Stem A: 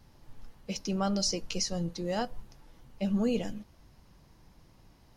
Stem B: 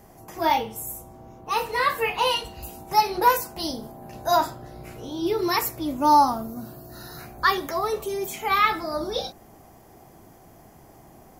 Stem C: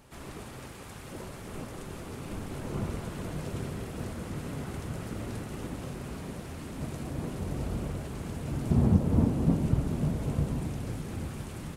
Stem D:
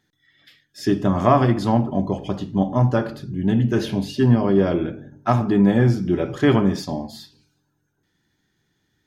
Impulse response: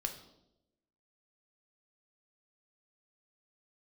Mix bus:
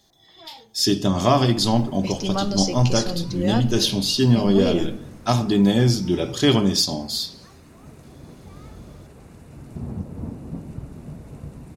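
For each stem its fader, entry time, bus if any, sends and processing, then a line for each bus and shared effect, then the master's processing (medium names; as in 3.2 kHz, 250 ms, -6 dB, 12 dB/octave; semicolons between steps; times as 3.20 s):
+1.5 dB, 1.35 s, send -3.5 dB, none
-14.5 dB, 0.00 s, no send, steep low-pass 2.4 kHz; saturation -23.5 dBFS, distortion -6 dB; auto duck -13 dB, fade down 1.70 s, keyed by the fourth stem
-8.0 dB, 1.05 s, no send, band-stop 3.2 kHz, Q 9.6
-1.0 dB, 0.00 s, no send, resonant high shelf 2.7 kHz +14 dB, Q 1.5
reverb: on, RT60 0.90 s, pre-delay 3 ms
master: none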